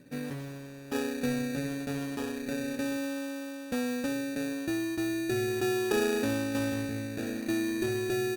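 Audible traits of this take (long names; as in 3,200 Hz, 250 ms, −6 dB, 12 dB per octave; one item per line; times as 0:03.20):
phaser sweep stages 12, 0.36 Hz, lowest notch 780–1,900 Hz
aliases and images of a low sample rate 2,100 Hz, jitter 0%
Opus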